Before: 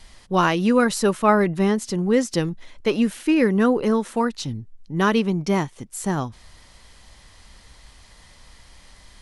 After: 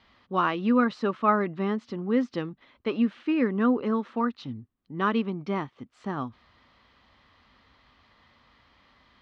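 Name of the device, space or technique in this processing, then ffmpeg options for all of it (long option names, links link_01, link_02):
guitar cabinet: -af "highpass=92,equalizer=frequency=170:width_type=q:width=4:gain=-4,equalizer=frequency=250:width_type=q:width=4:gain=7,equalizer=frequency=1200:width_type=q:width=4:gain=8,lowpass=frequency=3800:width=0.5412,lowpass=frequency=3800:width=1.3066,volume=-8.5dB"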